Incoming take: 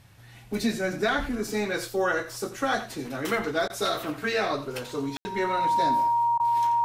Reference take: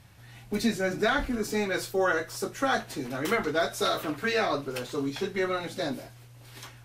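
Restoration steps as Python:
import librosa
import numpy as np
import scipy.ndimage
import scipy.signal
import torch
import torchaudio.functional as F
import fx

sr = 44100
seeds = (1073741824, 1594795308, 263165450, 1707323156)

y = fx.notch(x, sr, hz=940.0, q=30.0)
y = fx.fix_ambience(y, sr, seeds[0], print_start_s=0.0, print_end_s=0.5, start_s=5.17, end_s=5.25)
y = fx.fix_interpolate(y, sr, at_s=(3.68, 6.38), length_ms=17.0)
y = fx.fix_echo_inverse(y, sr, delay_ms=86, level_db=-12.5)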